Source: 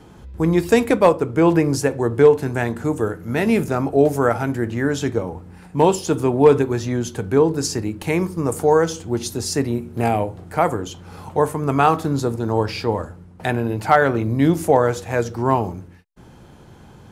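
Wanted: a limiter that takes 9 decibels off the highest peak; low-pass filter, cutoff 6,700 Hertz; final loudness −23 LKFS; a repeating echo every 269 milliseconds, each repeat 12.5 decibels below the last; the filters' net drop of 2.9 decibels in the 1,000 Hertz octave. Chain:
low-pass filter 6,700 Hz
parametric band 1,000 Hz −4 dB
brickwall limiter −11.5 dBFS
repeating echo 269 ms, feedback 24%, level −12.5 dB

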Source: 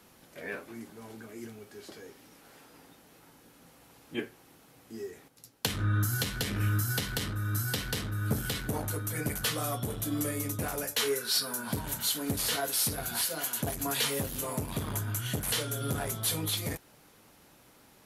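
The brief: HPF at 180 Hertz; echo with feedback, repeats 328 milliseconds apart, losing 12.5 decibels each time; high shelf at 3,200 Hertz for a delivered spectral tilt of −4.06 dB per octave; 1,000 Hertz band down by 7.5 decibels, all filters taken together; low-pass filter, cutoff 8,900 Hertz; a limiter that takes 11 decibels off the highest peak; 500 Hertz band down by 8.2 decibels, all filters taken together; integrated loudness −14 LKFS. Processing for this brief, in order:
high-pass filter 180 Hz
low-pass filter 8,900 Hz
parametric band 500 Hz −8.5 dB
parametric band 1,000 Hz −7 dB
high-shelf EQ 3,200 Hz −6 dB
brickwall limiter −31 dBFS
repeating echo 328 ms, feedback 24%, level −12.5 dB
level +27 dB

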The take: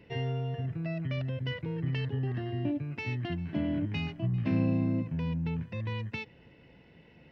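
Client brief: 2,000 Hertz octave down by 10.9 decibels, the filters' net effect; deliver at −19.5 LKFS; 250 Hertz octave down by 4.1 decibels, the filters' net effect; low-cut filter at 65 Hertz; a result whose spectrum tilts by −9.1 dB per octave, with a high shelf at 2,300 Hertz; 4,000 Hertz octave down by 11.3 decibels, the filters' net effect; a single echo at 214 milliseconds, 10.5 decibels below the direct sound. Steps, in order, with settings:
high-pass filter 65 Hz
parametric band 250 Hz −5.5 dB
parametric band 2,000 Hz −7.5 dB
high-shelf EQ 2,300 Hz −7 dB
parametric band 4,000 Hz −6 dB
single-tap delay 214 ms −10.5 dB
level +15.5 dB

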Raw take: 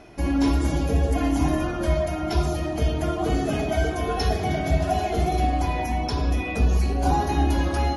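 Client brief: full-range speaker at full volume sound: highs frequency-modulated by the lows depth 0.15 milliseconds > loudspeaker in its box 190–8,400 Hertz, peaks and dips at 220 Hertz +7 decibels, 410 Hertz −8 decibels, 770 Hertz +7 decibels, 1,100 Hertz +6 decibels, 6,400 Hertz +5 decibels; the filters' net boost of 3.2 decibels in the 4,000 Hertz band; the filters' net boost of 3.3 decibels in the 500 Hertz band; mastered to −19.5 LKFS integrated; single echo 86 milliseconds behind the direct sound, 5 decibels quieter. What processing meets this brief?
parametric band 500 Hz +4 dB
parametric band 4,000 Hz +3.5 dB
single-tap delay 86 ms −5 dB
highs frequency-modulated by the lows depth 0.15 ms
loudspeaker in its box 190–8,400 Hz, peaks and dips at 220 Hz +7 dB, 410 Hz −8 dB, 770 Hz +7 dB, 1,100 Hz +6 dB, 6,400 Hz +5 dB
level +1.5 dB

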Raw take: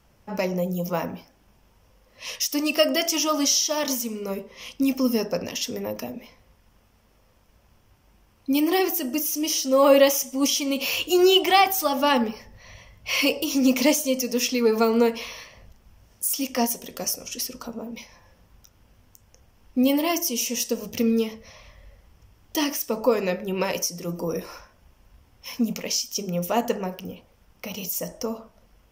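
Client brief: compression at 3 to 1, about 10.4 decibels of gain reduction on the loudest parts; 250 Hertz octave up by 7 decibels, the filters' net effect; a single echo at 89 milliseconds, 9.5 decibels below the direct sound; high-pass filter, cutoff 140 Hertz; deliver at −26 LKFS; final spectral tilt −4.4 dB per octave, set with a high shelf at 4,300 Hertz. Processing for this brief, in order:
high-pass filter 140 Hz
parametric band 250 Hz +8.5 dB
high-shelf EQ 4,300 Hz −6 dB
downward compressor 3 to 1, threshold −23 dBFS
single-tap delay 89 ms −9.5 dB
level +0.5 dB

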